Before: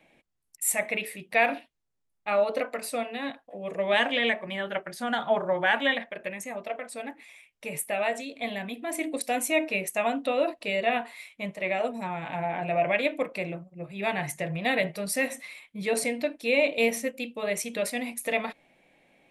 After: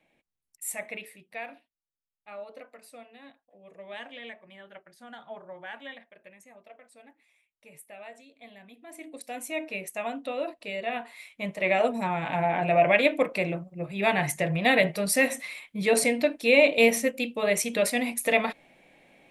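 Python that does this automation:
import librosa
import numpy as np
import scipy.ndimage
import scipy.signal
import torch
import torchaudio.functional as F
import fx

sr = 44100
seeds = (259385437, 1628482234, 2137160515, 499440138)

y = fx.gain(x, sr, db=fx.line((0.94, -8.0), (1.52, -17.0), (8.56, -17.0), (9.73, -6.0), (10.89, -6.0), (11.71, 4.5)))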